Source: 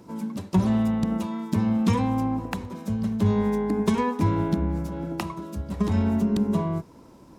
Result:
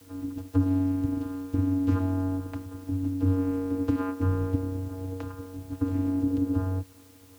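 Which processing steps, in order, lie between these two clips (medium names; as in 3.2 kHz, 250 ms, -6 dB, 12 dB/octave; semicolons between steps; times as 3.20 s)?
vocoder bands 8, square 93.5 Hz; in parallel at -5 dB: word length cut 8-bit, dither triangular; on the sum: trim -5.5 dB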